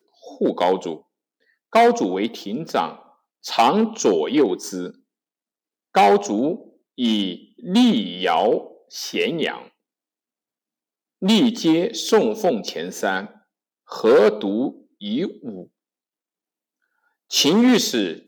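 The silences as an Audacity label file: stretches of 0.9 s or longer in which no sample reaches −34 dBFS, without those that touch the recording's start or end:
4.900000	5.950000	silence
9.620000	11.220000	silence
15.630000	17.310000	silence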